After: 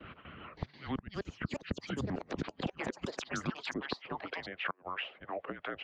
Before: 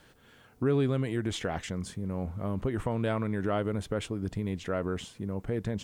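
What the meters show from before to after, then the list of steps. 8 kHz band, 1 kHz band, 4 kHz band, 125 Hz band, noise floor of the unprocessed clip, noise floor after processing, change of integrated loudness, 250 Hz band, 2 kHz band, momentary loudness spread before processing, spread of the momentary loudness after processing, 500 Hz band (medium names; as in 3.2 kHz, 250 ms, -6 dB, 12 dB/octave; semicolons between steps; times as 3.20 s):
-6.5 dB, -2.5 dB, -0.5 dB, -11.5 dB, -59 dBFS, -65 dBFS, -7.5 dB, -8.5 dB, +1.5 dB, 7 LU, 7 LU, -10.5 dB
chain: gate with hold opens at -51 dBFS; peaking EQ 1.2 kHz -6 dB 0.24 oct; mistuned SSB -280 Hz 250–3200 Hz; dynamic bell 110 Hz, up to -6 dB, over -49 dBFS, Q 4.1; compression 6:1, threshold -34 dBFS, peak gain reduction 10.5 dB; harmonic tremolo 2.9 Hz, depth 50%, crossover 510 Hz; high-pass sweep 80 Hz -> 530 Hz, 1.42–4.53 s; inverted gate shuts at -32 dBFS, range -30 dB; ever faster or slower copies 569 ms, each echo +7 st, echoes 2; harmonic-percussive split harmonic -16 dB; three bands compressed up and down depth 40%; trim +11.5 dB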